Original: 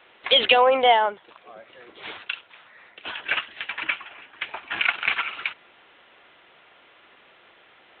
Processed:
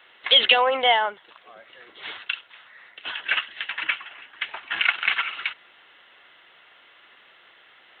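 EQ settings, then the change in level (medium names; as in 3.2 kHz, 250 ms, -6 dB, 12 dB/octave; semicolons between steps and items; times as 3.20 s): peaking EQ 2 kHz +7 dB 2 oct; treble shelf 3.8 kHz +10 dB; band-stop 2.4 kHz, Q 9.9; -6.0 dB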